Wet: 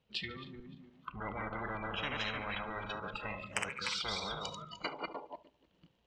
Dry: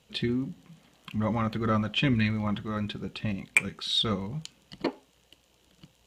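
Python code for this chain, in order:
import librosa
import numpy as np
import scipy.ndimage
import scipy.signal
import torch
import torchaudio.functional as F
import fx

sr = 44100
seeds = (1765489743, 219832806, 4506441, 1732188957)

p1 = fx.reverse_delay_fb(x, sr, ms=150, feedback_pct=45, wet_db=-4.0)
p2 = fx.riaa(p1, sr, side='playback', at=(1.09, 2.03))
p3 = fx.noise_reduce_blind(p2, sr, reduce_db=23)
p4 = fx.air_absorb(p3, sr, metres=200.0)
p5 = p4 + fx.echo_feedback(p4, sr, ms=72, feedback_pct=42, wet_db=-23, dry=0)
p6 = fx.spectral_comp(p5, sr, ratio=10.0)
y = F.gain(torch.from_numpy(p6), -8.0).numpy()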